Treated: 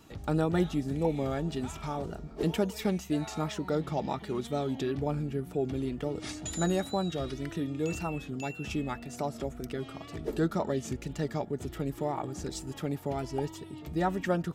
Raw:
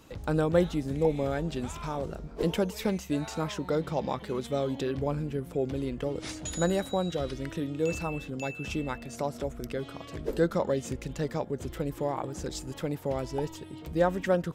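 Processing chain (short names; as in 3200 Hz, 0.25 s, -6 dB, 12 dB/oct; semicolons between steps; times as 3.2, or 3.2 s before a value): notch comb 520 Hz; wow and flutter 55 cents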